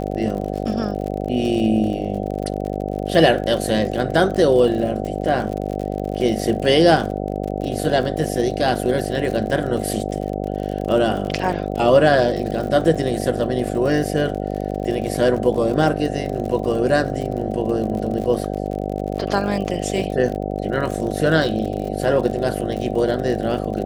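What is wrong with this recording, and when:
buzz 50 Hz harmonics 15 -25 dBFS
crackle 52/s -27 dBFS

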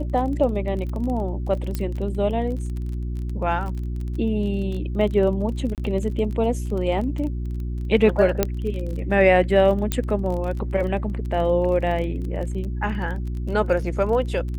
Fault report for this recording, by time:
crackle 25/s -30 dBFS
hum 60 Hz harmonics 6 -27 dBFS
1.75 pop -13 dBFS
5.75–5.78 gap 28 ms
8.43 pop -4 dBFS
9.92 pop -7 dBFS

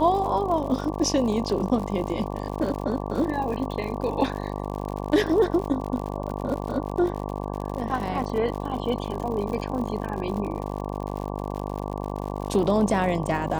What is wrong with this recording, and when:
buzz 50 Hz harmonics 23 -31 dBFS
crackle 90/s -32 dBFS

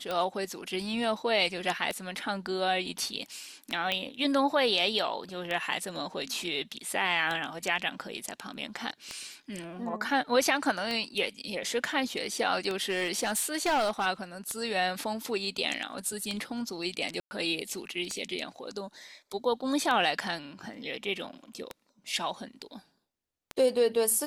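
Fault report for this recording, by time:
tick 33 1/3 rpm -18 dBFS
3.92 pop -15 dBFS
12.75–14.07 clipped -23 dBFS
17.2–17.31 gap 0.11 s

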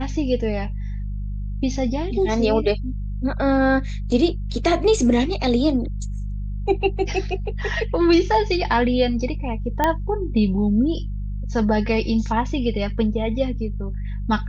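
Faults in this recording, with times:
hum 50 Hz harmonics 4 -27 dBFS
9.84 pop -6 dBFS

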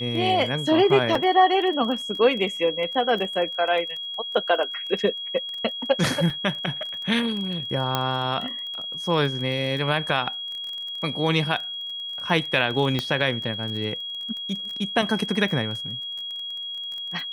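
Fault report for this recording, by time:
crackle 21/s -31 dBFS
tone 3300 Hz -30 dBFS
1.15 gap 3 ms
6.3 gap 2.5 ms
7.95 pop -8 dBFS
12.99 pop -11 dBFS

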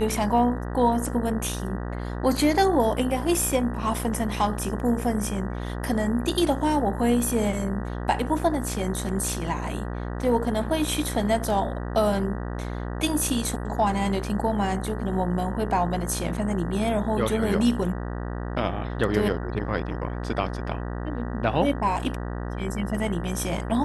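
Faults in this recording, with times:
buzz 60 Hz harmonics 32 -31 dBFS

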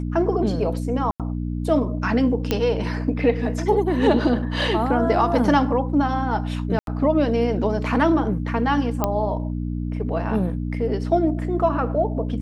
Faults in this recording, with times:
hum 60 Hz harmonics 5 -26 dBFS
1.11–1.2 gap 87 ms
2.51 pop -7 dBFS
6.79–6.87 gap 82 ms
9.04 pop -7 dBFS

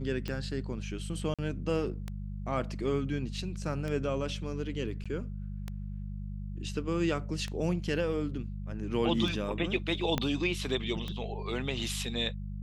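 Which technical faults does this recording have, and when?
hum 50 Hz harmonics 4 -38 dBFS
tick 33 1/3 rpm -22 dBFS
1.34–1.39 gap 46 ms
5.04–5.06 gap 16 ms
10.18 pop -14 dBFS

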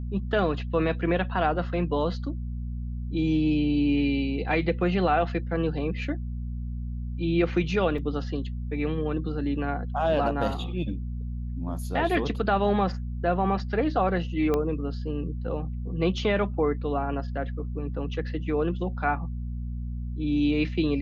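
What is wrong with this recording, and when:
hum 60 Hz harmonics 4 -32 dBFS
7.98 gap 3.3 ms
14.54 pop -14 dBFS

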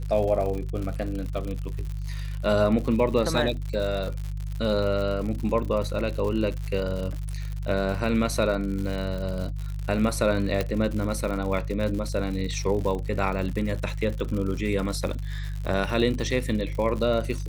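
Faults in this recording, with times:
crackle 100/s -31 dBFS
hum 50 Hz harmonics 3 -31 dBFS
10.61 pop -12 dBFS

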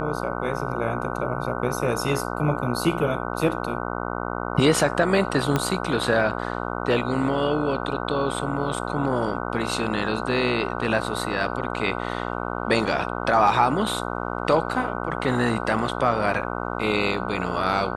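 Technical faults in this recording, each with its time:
buzz 60 Hz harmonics 25 -29 dBFS
5.56 pop -8 dBFS

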